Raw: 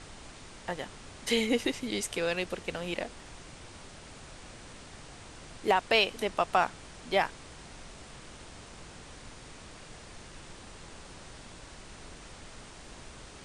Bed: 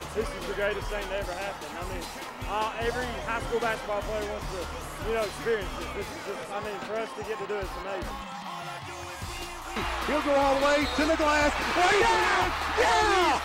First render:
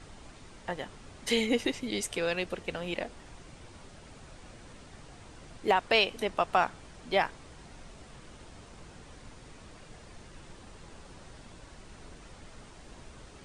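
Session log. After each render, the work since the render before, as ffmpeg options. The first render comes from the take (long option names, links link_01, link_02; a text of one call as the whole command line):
ffmpeg -i in.wav -af "afftdn=noise_reduction=6:noise_floor=-49" out.wav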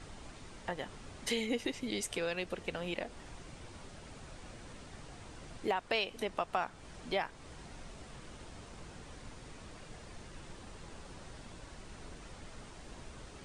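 ffmpeg -i in.wav -af "acompressor=threshold=-36dB:ratio=2" out.wav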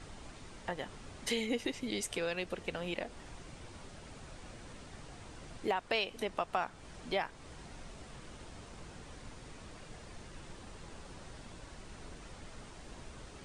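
ffmpeg -i in.wav -af anull out.wav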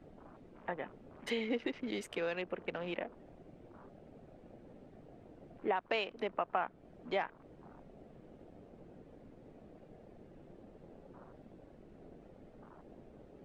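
ffmpeg -i in.wav -filter_complex "[0:a]afwtdn=0.00355,acrossover=split=160 3000:gain=0.224 1 0.2[link_01][link_02][link_03];[link_01][link_02][link_03]amix=inputs=3:normalize=0" out.wav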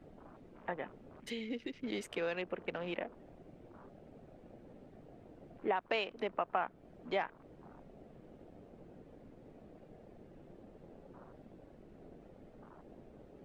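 ffmpeg -i in.wav -filter_complex "[0:a]asettb=1/sr,asplit=3[link_01][link_02][link_03];[link_01]atrim=end=1.204[link_04];[link_02]atrim=start=1.2:end=1.84,asetpts=PTS-STARTPTS,afade=type=in:duration=0.004:curve=qsin,afade=type=out:start_time=0.636:duration=0.004:curve=qsin,equalizer=frequency=940:width=0.57:gain=-14[link_05];[link_03]atrim=start=1.836[link_06];[link_04][link_05]acrossfade=duration=0.004:curve1=hsin:curve2=qsin[link_07];[link_07][link_06]acrossfade=duration=0.004:curve1=qsin:curve2=hsin" out.wav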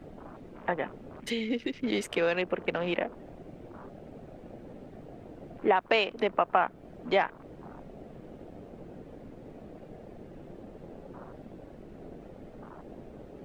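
ffmpeg -i in.wav -af "volume=9.5dB" out.wav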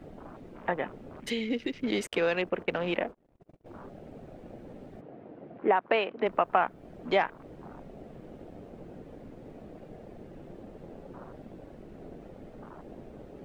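ffmpeg -i in.wav -filter_complex "[0:a]asettb=1/sr,asplit=3[link_01][link_02][link_03];[link_01]atrim=end=2.074[link_04];[link_02]atrim=start=2.07:end=3.66,asetpts=PTS-STARTPTS,afade=type=in:duration=0.004:curve=qsin,afade=type=out:start_time=1.586:duration=0.004:curve=qsin,agate=range=-42dB:threshold=-44dB:ratio=16:release=100:detection=peak[link_05];[link_03]atrim=start=3.656[link_06];[link_04][link_05]acrossfade=duration=0.004:curve1=hsin:curve2=qsin[link_07];[link_07][link_06]acrossfade=duration=0.004:curve1=qsin:curve2=hsin,asplit=3[link_08][link_09][link_10];[link_08]afade=type=out:start_time=5:duration=0.02[link_11];[link_09]highpass=160,lowpass=2300,afade=type=in:start_time=5:duration=0.02,afade=type=out:start_time=6.25:duration=0.02[link_12];[link_10]afade=type=in:start_time=6.25:duration=0.02[link_13];[link_11][link_12][link_13]amix=inputs=3:normalize=0" out.wav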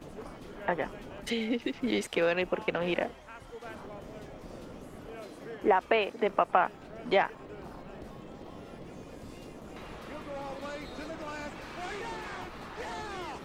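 ffmpeg -i in.wav -i bed.wav -filter_complex "[1:a]volume=-17dB[link_01];[0:a][link_01]amix=inputs=2:normalize=0" out.wav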